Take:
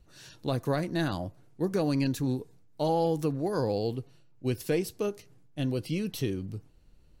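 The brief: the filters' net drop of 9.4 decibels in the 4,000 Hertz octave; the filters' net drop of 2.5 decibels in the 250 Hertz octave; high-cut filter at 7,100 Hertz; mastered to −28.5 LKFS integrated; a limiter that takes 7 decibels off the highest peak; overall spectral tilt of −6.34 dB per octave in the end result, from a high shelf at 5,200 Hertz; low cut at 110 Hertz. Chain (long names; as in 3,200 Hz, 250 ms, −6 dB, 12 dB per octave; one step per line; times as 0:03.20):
high-pass filter 110 Hz
low-pass filter 7,100 Hz
parametric band 250 Hz −3 dB
parametric band 4,000 Hz −8.5 dB
high-shelf EQ 5,200 Hz −6.5 dB
level +7.5 dB
brickwall limiter −17 dBFS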